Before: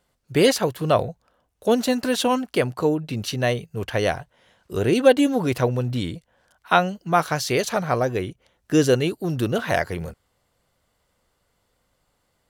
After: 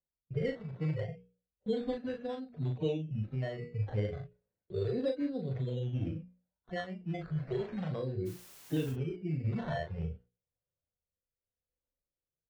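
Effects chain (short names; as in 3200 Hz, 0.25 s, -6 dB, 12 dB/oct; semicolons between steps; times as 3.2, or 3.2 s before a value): median-filter separation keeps harmonic; gate with hold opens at -41 dBFS; notches 60/120/180/240/300/360/420/480 Hz; decimation with a swept rate 14×, swing 60% 0.34 Hz; ten-band EQ 250 Hz -4 dB, 1000 Hz -5 dB, 2000 Hz +6 dB, 4000 Hz +11 dB, 8000 Hz +7 dB; compressor 4:1, threshold -29 dBFS, peak gain reduction 18 dB; low-pass opened by the level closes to 610 Hz, open at -12.5 dBFS; rotary speaker horn 1 Hz; 8.25–8.91 added noise white -56 dBFS; doubler 38 ms -5 dB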